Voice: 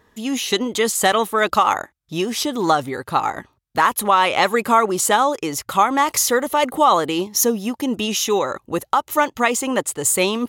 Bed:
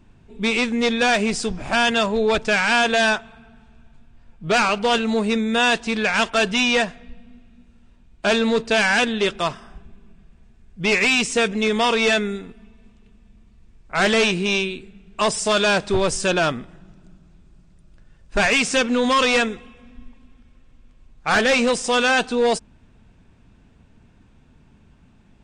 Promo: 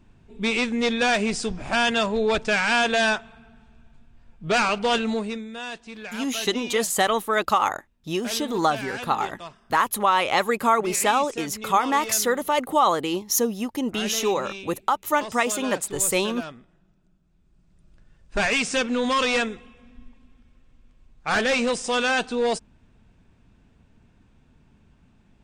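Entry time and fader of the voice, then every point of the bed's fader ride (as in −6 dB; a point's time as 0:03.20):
5.95 s, −4.5 dB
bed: 0:05.08 −3 dB
0:05.54 −16.5 dB
0:17.22 −16.5 dB
0:17.86 −4.5 dB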